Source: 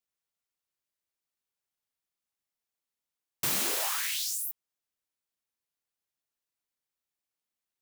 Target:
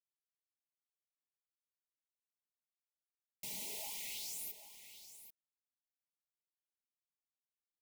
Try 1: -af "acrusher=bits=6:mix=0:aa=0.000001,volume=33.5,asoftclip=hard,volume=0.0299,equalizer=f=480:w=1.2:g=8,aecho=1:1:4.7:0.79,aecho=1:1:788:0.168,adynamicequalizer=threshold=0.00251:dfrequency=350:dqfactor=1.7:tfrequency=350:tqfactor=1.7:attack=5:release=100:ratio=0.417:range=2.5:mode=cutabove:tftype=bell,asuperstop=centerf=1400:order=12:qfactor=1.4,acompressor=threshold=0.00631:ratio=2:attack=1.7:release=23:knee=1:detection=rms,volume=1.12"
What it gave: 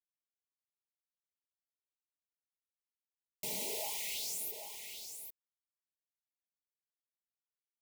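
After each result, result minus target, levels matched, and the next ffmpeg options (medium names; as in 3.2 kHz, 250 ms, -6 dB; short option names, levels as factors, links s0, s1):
500 Hz band +7.5 dB; overload inside the chain: distortion -4 dB
-af "acrusher=bits=6:mix=0:aa=0.000001,volume=33.5,asoftclip=hard,volume=0.0299,equalizer=f=480:w=1.2:g=-2,aecho=1:1:4.7:0.79,aecho=1:1:788:0.168,adynamicequalizer=threshold=0.00251:dfrequency=350:dqfactor=1.7:tfrequency=350:tqfactor=1.7:attack=5:release=100:ratio=0.417:range=2.5:mode=cutabove:tftype=bell,asuperstop=centerf=1400:order=12:qfactor=1.4,acompressor=threshold=0.00631:ratio=2:attack=1.7:release=23:knee=1:detection=rms,volume=1.12"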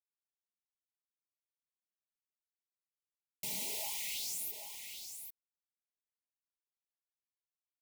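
overload inside the chain: distortion -4 dB
-af "acrusher=bits=6:mix=0:aa=0.000001,volume=133,asoftclip=hard,volume=0.0075,equalizer=f=480:w=1.2:g=-2,aecho=1:1:4.7:0.79,aecho=1:1:788:0.168,adynamicequalizer=threshold=0.00251:dfrequency=350:dqfactor=1.7:tfrequency=350:tqfactor=1.7:attack=5:release=100:ratio=0.417:range=2.5:mode=cutabove:tftype=bell,asuperstop=centerf=1400:order=12:qfactor=1.4,acompressor=threshold=0.00631:ratio=2:attack=1.7:release=23:knee=1:detection=rms,volume=1.12"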